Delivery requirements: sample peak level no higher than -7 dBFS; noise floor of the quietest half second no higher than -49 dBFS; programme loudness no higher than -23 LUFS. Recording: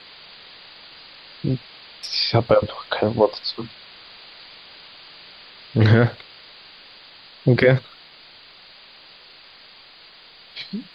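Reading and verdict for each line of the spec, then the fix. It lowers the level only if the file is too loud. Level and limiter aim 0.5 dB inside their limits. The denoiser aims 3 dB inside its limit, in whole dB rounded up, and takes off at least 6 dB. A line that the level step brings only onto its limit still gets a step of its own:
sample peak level -3.5 dBFS: fail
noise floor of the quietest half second -47 dBFS: fail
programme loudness -20.5 LUFS: fail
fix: gain -3 dB; limiter -7.5 dBFS

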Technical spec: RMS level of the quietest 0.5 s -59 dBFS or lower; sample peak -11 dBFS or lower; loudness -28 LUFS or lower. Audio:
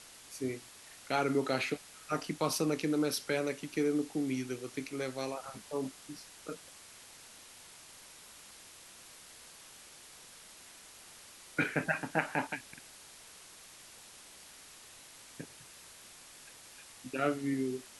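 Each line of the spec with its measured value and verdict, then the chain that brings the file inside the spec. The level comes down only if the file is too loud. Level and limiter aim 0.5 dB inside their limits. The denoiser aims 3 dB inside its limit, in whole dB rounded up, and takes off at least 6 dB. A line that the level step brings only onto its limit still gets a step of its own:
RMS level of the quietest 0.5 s -54 dBFS: fail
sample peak -14.0 dBFS: OK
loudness -35.0 LUFS: OK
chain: denoiser 8 dB, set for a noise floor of -54 dBFS

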